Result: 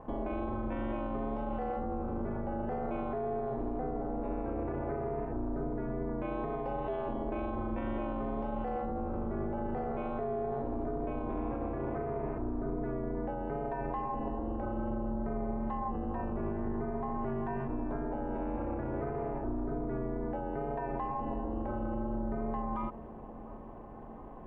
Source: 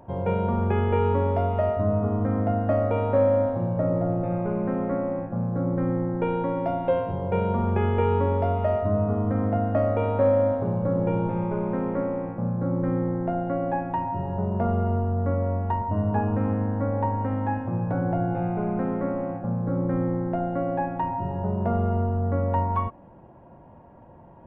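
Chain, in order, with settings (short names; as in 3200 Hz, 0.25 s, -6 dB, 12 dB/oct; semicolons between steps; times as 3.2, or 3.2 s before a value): wow and flutter 19 cents; limiter -29 dBFS, peak gain reduction 17.5 dB; ring modulator 130 Hz; on a send: dark delay 0.697 s, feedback 73%, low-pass 1100 Hz, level -18 dB; on the sum: gain +3.5 dB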